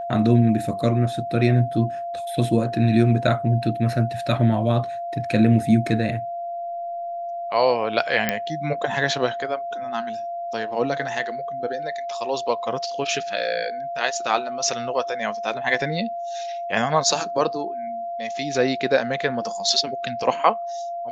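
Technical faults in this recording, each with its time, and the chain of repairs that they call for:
whine 690 Hz -27 dBFS
8.29 s: pop -5 dBFS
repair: de-click; band-stop 690 Hz, Q 30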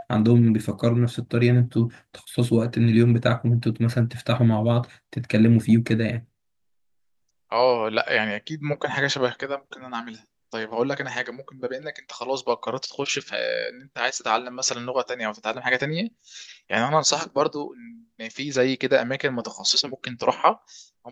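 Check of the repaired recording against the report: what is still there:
nothing left

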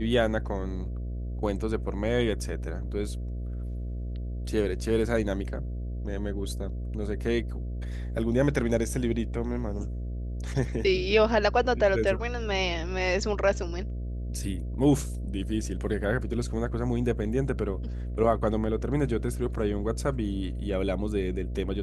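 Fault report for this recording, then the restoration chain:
buzz 60 Hz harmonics 11 -33 dBFS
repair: de-hum 60 Hz, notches 11

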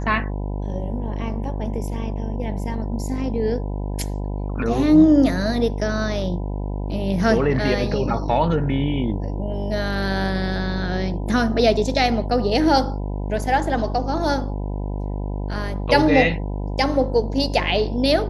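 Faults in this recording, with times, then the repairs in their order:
buzz 50 Hz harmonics 20 -26 dBFS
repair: de-hum 50 Hz, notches 20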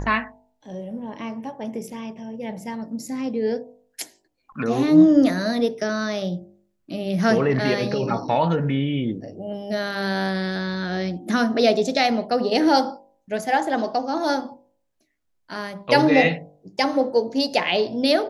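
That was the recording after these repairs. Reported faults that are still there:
nothing left

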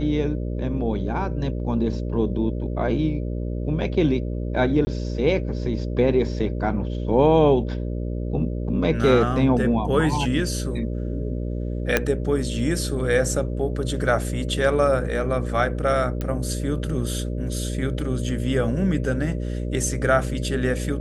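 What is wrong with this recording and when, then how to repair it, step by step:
buzz 60 Hz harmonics 10 -27 dBFS
4.85–4.87 s: dropout 20 ms
11.97 s: pop -4 dBFS
16.21 s: pop -15 dBFS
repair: de-click; de-hum 60 Hz, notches 10; interpolate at 4.85 s, 20 ms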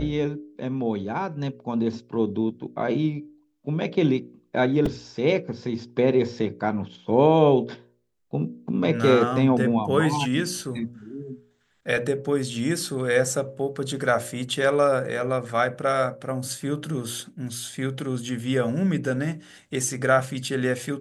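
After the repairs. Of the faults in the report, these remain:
nothing left

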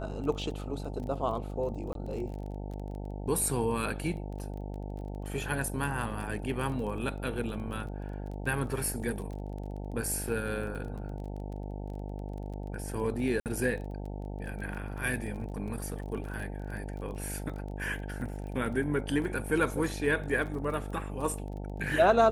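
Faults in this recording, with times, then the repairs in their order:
buzz 50 Hz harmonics 18 -38 dBFS
crackle 22 per s -39 dBFS
1.93–1.95 s: dropout 22 ms
13.40–13.46 s: dropout 58 ms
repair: de-click; de-hum 50 Hz, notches 18; interpolate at 1.93 s, 22 ms; interpolate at 13.40 s, 58 ms

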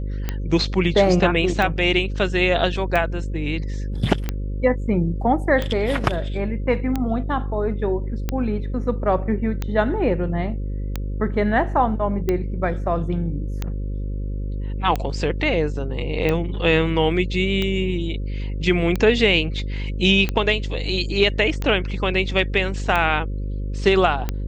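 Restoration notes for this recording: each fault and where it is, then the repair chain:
buzz 50 Hz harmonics 11 -26 dBFS
tick 45 rpm -10 dBFS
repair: de-click; de-hum 50 Hz, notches 11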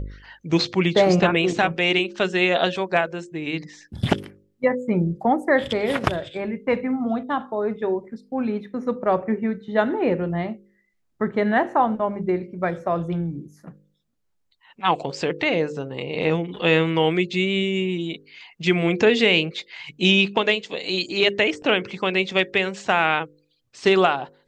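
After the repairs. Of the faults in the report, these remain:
nothing left

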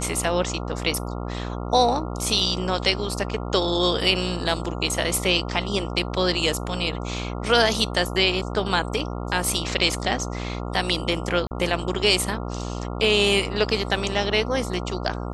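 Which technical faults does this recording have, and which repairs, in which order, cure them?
buzz 60 Hz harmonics 23 -30 dBFS
11.47–11.51 s: dropout 39 ms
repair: de-hum 60 Hz, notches 23; interpolate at 11.47 s, 39 ms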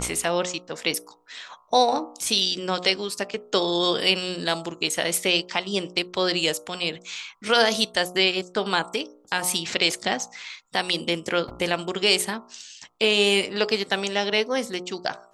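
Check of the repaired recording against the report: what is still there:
nothing left

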